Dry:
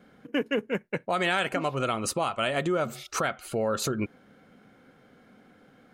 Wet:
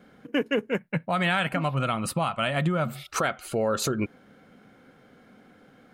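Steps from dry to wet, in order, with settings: 0.79–3.16 fifteen-band EQ 160 Hz +9 dB, 400 Hz -10 dB, 6300 Hz -12 dB; gain +2 dB

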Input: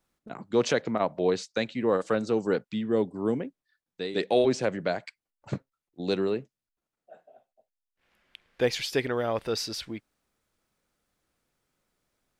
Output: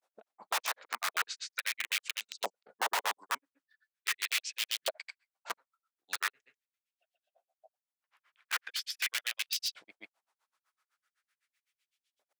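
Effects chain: grains, grains 7.9/s; wrapped overs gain 26.5 dB; LFO high-pass saw up 0.41 Hz 590–3300 Hz

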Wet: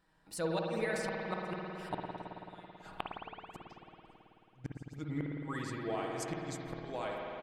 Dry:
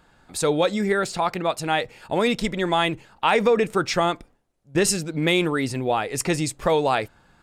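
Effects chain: Doppler pass-by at 2.73, 31 m/s, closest 11 m; comb 6.3 ms, depth 51%; in parallel at 0 dB: compressor 6:1, threshold -31 dBFS, peak gain reduction 14.5 dB; on the sum: flipped gate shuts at -20 dBFS, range -37 dB; spring tank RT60 3.4 s, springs 54 ms, chirp 35 ms, DRR -1.5 dB; gain -5 dB

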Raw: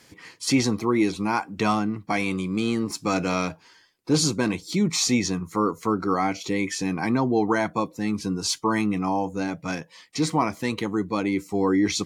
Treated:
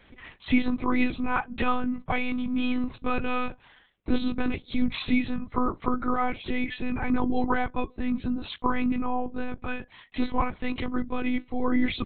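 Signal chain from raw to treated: dynamic EQ 530 Hz, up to -4 dB, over -36 dBFS, Q 1.2; monotone LPC vocoder at 8 kHz 250 Hz

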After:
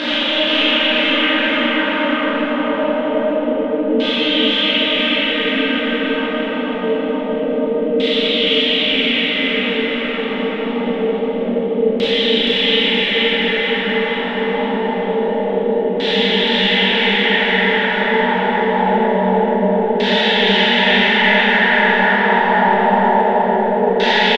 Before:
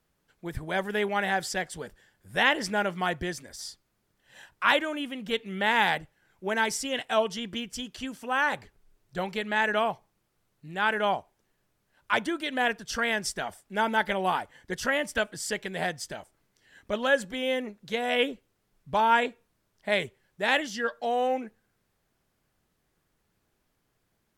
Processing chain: resonant high shelf 6300 Hz -12 dB, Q 3; in parallel at -0.5 dB: limiter -17.5 dBFS, peak gain reduction 11.5 dB; on the sum: sample leveller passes 2; Paulstretch 41×, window 1.00 s, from 5.01; chorus 1.2 Hz, delay 16.5 ms, depth 3.2 ms; LFO low-pass saw down 0.25 Hz 430–4400 Hz; feedback echo 0.474 s, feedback 49%, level -3.5 dB; Schroeder reverb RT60 0.81 s, combs from 26 ms, DRR -4 dB; gain -3 dB

